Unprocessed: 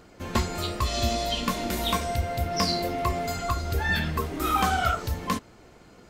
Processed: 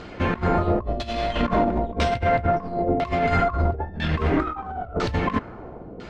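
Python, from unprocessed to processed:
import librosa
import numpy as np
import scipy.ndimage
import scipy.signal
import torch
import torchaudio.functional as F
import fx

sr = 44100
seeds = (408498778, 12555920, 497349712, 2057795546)

y = fx.tracing_dist(x, sr, depth_ms=0.19)
y = fx.over_compress(y, sr, threshold_db=-31.0, ratio=-0.5)
y = fx.filter_lfo_lowpass(y, sr, shape='saw_down', hz=1.0, low_hz=470.0, high_hz=4000.0, q=1.2)
y = y * librosa.db_to_amplitude(8.5)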